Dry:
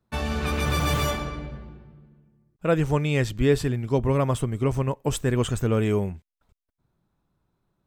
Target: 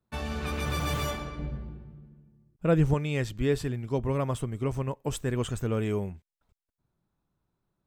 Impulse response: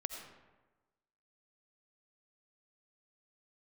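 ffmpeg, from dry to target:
-filter_complex "[0:a]asettb=1/sr,asplit=3[a][b][c];[a]atrim=end=1.394[d];[b]atrim=start=1.39:end=2.94,asetpts=PTS-STARTPTS,afade=t=in:d=0.004:c=qsin,afade=t=out:st=1.546:d=0.004:c=qsin,lowshelf=f=370:g=9[e];[c]atrim=start=2.936[f];[d][e]acrossfade=d=0.004:c1=hsin:c2=qsin[g];[g][f]acrossfade=d=0.004:c1=qsin:c2=hsin,volume=-6dB"

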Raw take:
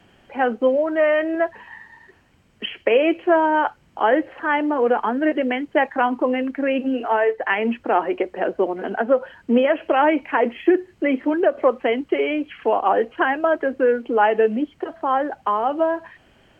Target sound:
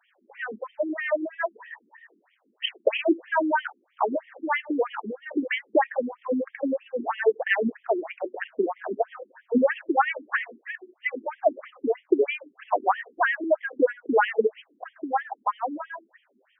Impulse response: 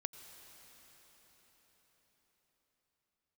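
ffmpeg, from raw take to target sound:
-filter_complex "[0:a]dynaudnorm=f=150:g=17:m=11.5dB,asettb=1/sr,asplit=3[a][b][c];[a]atrim=end=4.954[d];[b]atrim=start=4.95:end=5.49,asetpts=PTS-STARTPTS,afade=t=in:d=0.004:c=qsin,afade=t=out:st=0.536:d=0.004:c=qsin,equalizer=f=2.3k:w=0.96:g=-12.5[e];[c]atrim=start=5.486[f];[d][e]acrossfade=d=0.004:c1=hsin:c2=qsin[g];[g][f]acrossfade=d=0.004:c1=qsin:c2=hsin,afftfilt=real='re*between(b*sr/1024,270*pow(2600/270,0.5+0.5*sin(2*PI*3.1*pts/sr))/1.41,270*pow(2600/270,0.5+0.5*sin(2*PI*3.1*pts/sr))*1.41)':imag='im*between(b*sr/1024,270*pow(2600/270,0.5+0.5*sin(2*PI*3.1*pts/sr))/1.41,270*pow(2600/270,0.5+0.5*sin(2*PI*3.1*pts/sr))*1.41)':win_size=1024:overlap=0.75,volume=-4dB"

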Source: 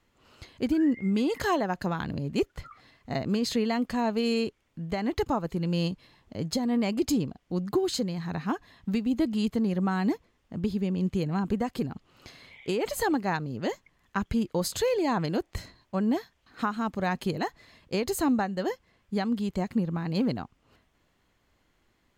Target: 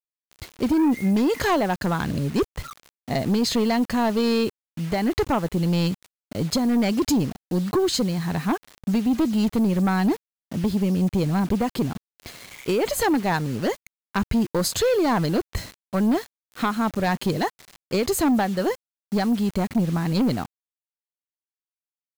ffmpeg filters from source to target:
-af "acrusher=bits=7:mix=0:aa=0.000001,aeval=exprs='0.158*sin(PI/2*1.58*val(0)/0.158)':c=same"

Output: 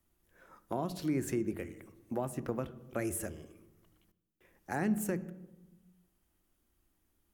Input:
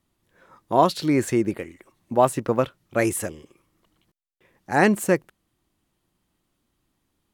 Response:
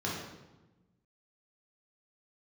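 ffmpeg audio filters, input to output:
-filter_complex "[0:a]equalizer=f=125:t=o:w=1:g=-12,equalizer=f=250:t=o:w=1:g=-6,equalizer=f=500:t=o:w=1:g=-6,equalizer=f=1k:t=o:w=1:g=-9,equalizer=f=2k:t=o:w=1:g=-5,equalizer=f=4k:t=o:w=1:g=-10,equalizer=f=8k:t=o:w=1:g=-5,acrossover=split=210[a][b];[b]acompressor=threshold=-38dB:ratio=8[c];[a][c]amix=inputs=2:normalize=0,asplit=2[d][e];[1:a]atrim=start_sample=2205[f];[e][f]afir=irnorm=-1:irlink=0,volume=-19dB[g];[d][g]amix=inputs=2:normalize=0,volume=3dB"

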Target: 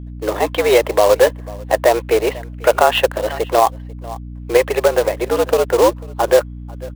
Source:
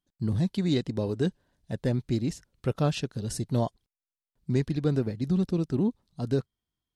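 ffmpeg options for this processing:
-filter_complex "[0:a]highpass=f=390:t=q:w=0.5412,highpass=f=390:t=q:w=1.307,lowpass=f=2.9k:t=q:w=0.5176,lowpass=f=2.9k:t=q:w=0.7071,lowpass=f=2.9k:t=q:w=1.932,afreqshift=100,asplit=3[a][b][c];[a]afade=t=out:st=4.61:d=0.02[d];[b]acompressor=threshold=-33dB:ratio=16,afade=t=in:st=4.61:d=0.02,afade=t=out:st=5.8:d=0.02[e];[c]afade=t=in:st=5.8:d=0.02[f];[d][e][f]amix=inputs=3:normalize=0,aecho=1:1:493:0.0668,adynamicequalizer=threshold=0.00282:dfrequency=1000:dqfactor=1.9:tfrequency=1000:tqfactor=1.9:attack=5:release=100:ratio=0.375:range=3:mode=boostabove:tftype=bell,acrusher=bits=3:mode=log:mix=0:aa=0.000001,aeval=exprs='val(0)+0.00251*(sin(2*PI*60*n/s)+sin(2*PI*2*60*n/s)/2+sin(2*PI*3*60*n/s)/3+sin(2*PI*4*60*n/s)/4+sin(2*PI*5*60*n/s)/5)':c=same,alimiter=level_in=23.5dB:limit=-1dB:release=50:level=0:latency=1,volume=-1dB"

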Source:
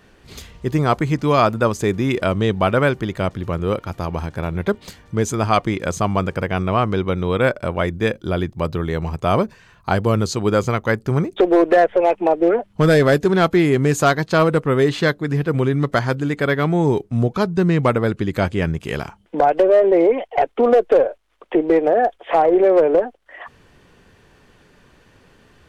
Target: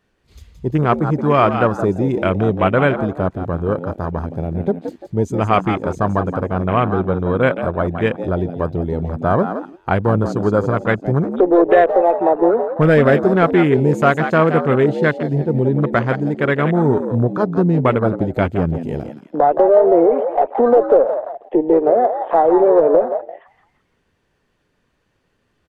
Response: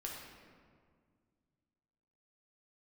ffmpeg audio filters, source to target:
-filter_complex "[0:a]asplit=5[a][b][c][d][e];[b]adelay=171,afreqshift=80,volume=-8.5dB[f];[c]adelay=342,afreqshift=160,volume=-17.1dB[g];[d]adelay=513,afreqshift=240,volume=-25.8dB[h];[e]adelay=684,afreqshift=320,volume=-34.4dB[i];[a][f][g][h][i]amix=inputs=5:normalize=0,afwtdn=0.0631,volume=1.5dB"

